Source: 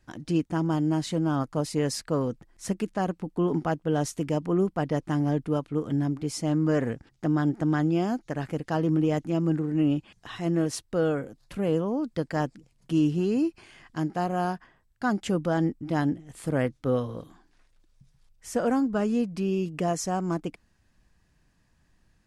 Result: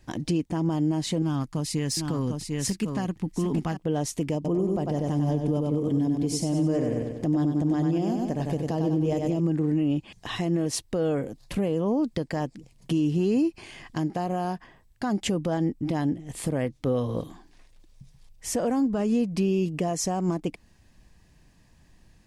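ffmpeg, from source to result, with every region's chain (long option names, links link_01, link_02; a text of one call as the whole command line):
ffmpeg -i in.wav -filter_complex "[0:a]asettb=1/sr,asplit=3[link_01][link_02][link_03];[link_01]atrim=end=1.224[link_04];[link_02]atrim=start=1.22:end=3.77,asetpts=PTS-STARTPTS,afade=type=in:duration=0.004:curve=qsin,afade=type=out:start_time=2.546:duration=0.004:curve=qsin,equalizer=frequency=560:width=0.92:gain=-11.5,aecho=1:1:747:0.398,atrim=end_sample=112455,aeval=exprs='clip(val(0),-1,0.0501)':channel_layout=same[link_05];[link_03]atrim=start=3.766[link_06];[link_04][link_05]acrossfade=duration=0.004:curve1=hsin:curve2=qsin[link_07];[link_07][link_06]acrossfade=duration=0.004:curve1=qsin:curve2=hsin,asettb=1/sr,asplit=3[link_08][link_09][link_10];[link_08]atrim=end=4.354[link_11];[link_09]atrim=start=4.35:end=9.4,asetpts=PTS-STARTPTS,afade=type=in:duration=0.004:curve=qsin,afade=type=out:start_time=5.046:duration=0.004:curve=qsin,equalizer=frequency=1700:width_type=o:width=1.7:gain=-7.5,aecho=1:1:95|190|285|380|475|570:0.562|0.264|0.124|0.0584|0.0274|0.0129,atrim=end_sample=222705[link_12];[link_10]atrim=start=9.396[link_13];[link_11][link_12]acrossfade=duration=0.004:curve1=hsin:curve2=qsin[link_14];[link_14][link_13]acrossfade=duration=0.004:curve1=qsin:curve2=hsin,alimiter=level_in=1.5dB:limit=-24dB:level=0:latency=1:release=221,volume=-1.5dB,equalizer=frequency=1400:width_type=o:width=0.45:gain=-8.5,volume=8.5dB" out.wav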